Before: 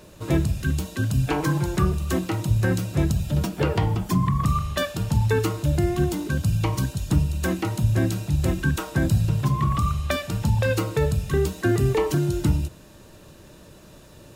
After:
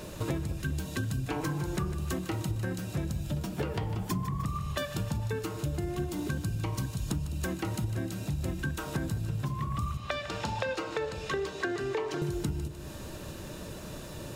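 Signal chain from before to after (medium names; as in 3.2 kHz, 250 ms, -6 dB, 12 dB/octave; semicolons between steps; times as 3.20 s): 9.97–12.22 s: three-band isolator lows -19 dB, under 330 Hz, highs -21 dB, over 6.3 kHz; compression 12:1, threshold -35 dBFS, peak gain reduction 20.5 dB; two-band feedback delay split 750 Hz, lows 212 ms, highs 152 ms, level -12 dB; trim +5.5 dB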